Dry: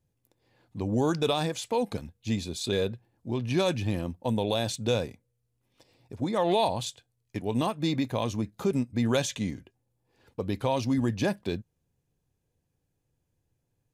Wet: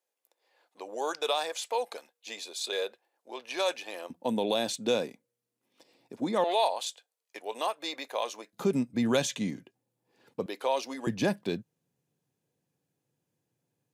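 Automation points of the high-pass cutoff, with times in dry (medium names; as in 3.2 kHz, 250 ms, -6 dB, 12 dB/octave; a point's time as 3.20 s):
high-pass 24 dB/octave
500 Hz
from 4.10 s 200 Hz
from 6.44 s 490 Hz
from 8.53 s 150 Hz
from 10.46 s 400 Hz
from 11.07 s 140 Hz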